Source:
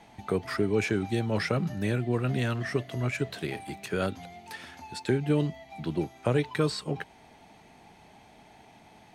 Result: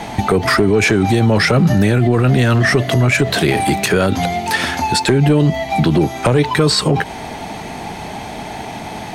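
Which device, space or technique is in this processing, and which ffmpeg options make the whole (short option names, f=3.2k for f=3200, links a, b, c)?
mastering chain: -af "equalizer=f=2.6k:t=o:w=0.77:g=-2,acompressor=threshold=-30dB:ratio=2.5,asoftclip=type=tanh:threshold=-21dB,asoftclip=type=hard:threshold=-24.5dB,alimiter=level_in=31.5dB:limit=-1dB:release=50:level=0:latency=1,volume=-4.5dB"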